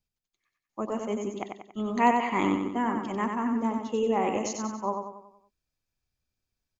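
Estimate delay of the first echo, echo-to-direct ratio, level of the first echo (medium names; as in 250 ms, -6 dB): 93 ms, -4.0 dB, -5.0 dB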